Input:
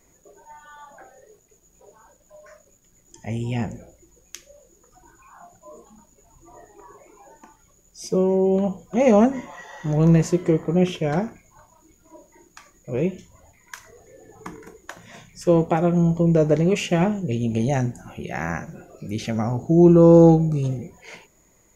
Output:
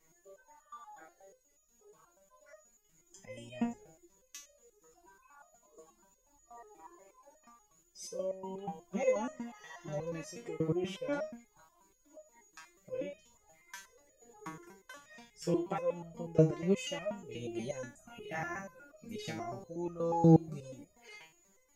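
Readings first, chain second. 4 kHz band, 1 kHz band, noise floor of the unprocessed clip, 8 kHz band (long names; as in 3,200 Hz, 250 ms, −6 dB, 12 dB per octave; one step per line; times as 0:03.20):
−10.0 dB, −12.0 dB, −59 dBFS, −11.0 dB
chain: low-shelf EQ 460 Hz −3.5 dB
in parallel at −3 dB: downward compressor, threshold −26 dBFS, peak gain reduction 15 dB
on the sum: step-sequenced resonator 8.3 Hz 160–620 Hz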